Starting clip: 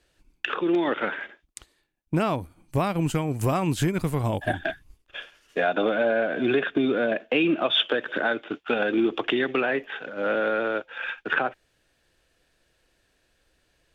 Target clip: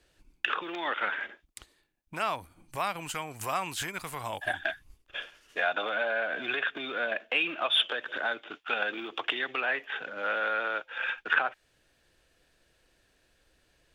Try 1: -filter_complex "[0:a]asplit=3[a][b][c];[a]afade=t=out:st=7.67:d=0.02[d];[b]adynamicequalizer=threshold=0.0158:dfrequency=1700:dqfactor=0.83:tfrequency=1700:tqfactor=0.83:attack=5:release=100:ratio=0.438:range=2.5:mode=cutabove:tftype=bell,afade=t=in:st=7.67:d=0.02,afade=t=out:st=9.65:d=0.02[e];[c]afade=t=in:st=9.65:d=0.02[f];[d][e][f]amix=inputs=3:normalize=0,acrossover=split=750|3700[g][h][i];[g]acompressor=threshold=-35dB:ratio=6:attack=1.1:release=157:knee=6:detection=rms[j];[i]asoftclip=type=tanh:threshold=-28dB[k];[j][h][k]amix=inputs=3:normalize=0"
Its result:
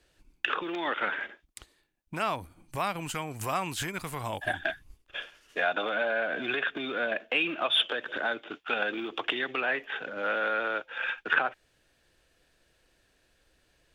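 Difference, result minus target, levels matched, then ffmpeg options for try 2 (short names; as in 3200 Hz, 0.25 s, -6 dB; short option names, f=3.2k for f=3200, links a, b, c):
compressor: peak gain reduction -6 dB
-filter_complex "[0:a]asplit=3[a][b][c];[a]afade=t=out:st=7.67:d=0.02[d];[b]adynamicequalizer=threshold=0.0158:dfrequency=1700:dqfactor=0.83:tfrequency=1700:tqfactor=0.83:attack=5:release=100:ratio=0.438:range=2.5:mode=cutabove:tftype=bell,afade=t=in:st=7.67:d=0.02,afade=t=out:st=9.65:d=0.02[e];[c]afade=t=in:st=9.65:d=0.02[f];[d][e][f]amix=inputs=3:normalize=0,acrossover=split=750|3700[g][h][i];[g]acompressor=threshold=-42.5dB:ratio=6:attack=1.1:release=157:knee=6:detection=rms[j];[i]asoftclip=type=tanh:threshold=-28dB[k];[j][h][k]amix=inputs=3:normalize=0"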